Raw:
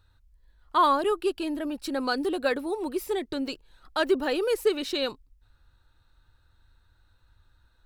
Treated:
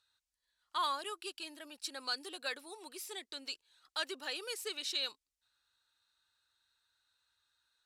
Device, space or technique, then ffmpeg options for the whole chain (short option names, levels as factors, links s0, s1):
piezo pickup straight into a mixer: -af "lowpass=7300,aderivative,volume=1.41"